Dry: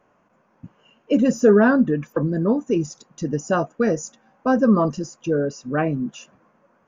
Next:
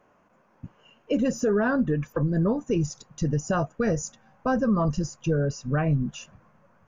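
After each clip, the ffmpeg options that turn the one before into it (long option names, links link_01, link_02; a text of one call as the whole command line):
ffmpeg -i in.wav -af "asubboost=boost=11.5:cutoff=89,alimiter=limit=-15.5dB:level=0:latency=1:release=174" out.wav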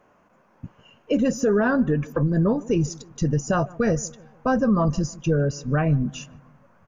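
ffmpeg -i in.wav -filter_complex "[0:a]asplit=2[link_01][link_02];[link_02]adelay=151,lowpass=frequency=1000:poles=1,volume=-20.5dB,asplit=2[link_03][link_04];[link_04]adelay=151,lowpass=frequency=1000:poles=1,volume=0.49,asplit=2[link_05][link_06];[link_06]adelay=151,lowpass=frequency=1000:poles=1,volume=0.49,asplit=2[link_07][link_08];[link_08]adelay=151,lowpass=frequency=1000:poles=1,volume=0.49[link_09];[link_01][link_03][link_05][link_07][link_09]amix=inputs=5:normalize=0,volume=3dB" out.wav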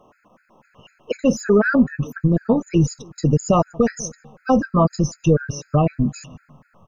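ffmpeg -i in.wav -af "afftfilt=real='re*gt(sin(2*PI*4*pts/sr)*(1-2*mod(floor(b*sr/1024/1300),2)),0)':imag='im*gt(sin(2*PI*4*pts/sr)*(1-2*mod(floor(b*sr/1024/1300),2)),0)':win_size=1024:overlap=0.75,volume=6.5dB" out.wav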